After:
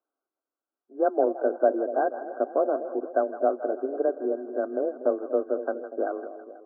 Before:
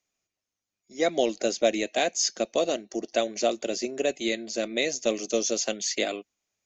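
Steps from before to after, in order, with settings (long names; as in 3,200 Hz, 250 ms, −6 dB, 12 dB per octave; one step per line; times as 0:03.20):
linear-phase brick-wall band-pass 220–1,600 Hz
echo with a time of its own for lows and highs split 670 Hz, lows 241 ms, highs 162 ms, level −11 dB
frequency shifter +22 Hz
level +1.5 dB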